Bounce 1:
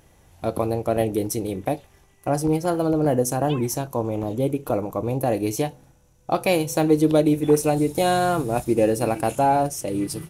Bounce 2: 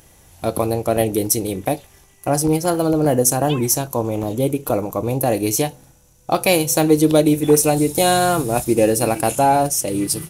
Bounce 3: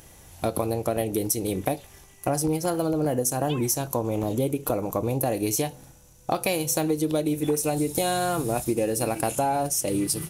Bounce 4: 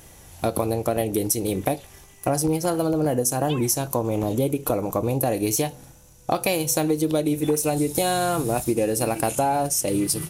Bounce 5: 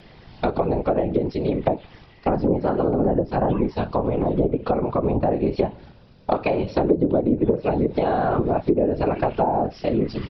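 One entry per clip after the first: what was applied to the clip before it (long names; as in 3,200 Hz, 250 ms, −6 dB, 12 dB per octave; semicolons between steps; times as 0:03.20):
high-shelf EQ 3,900 Hz +10 dB; level +3.5 dB
downward compressor, threshold −22 dBFS, peak gain reduction 13 dB
tape wow and flutter 18 cents; level +2.5 dB
downsampling to 11,025 Hz; random phases in short frames; treble cut that deepens with the level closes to 750 Hz, closed at −17 dBFS; level +2.5 dB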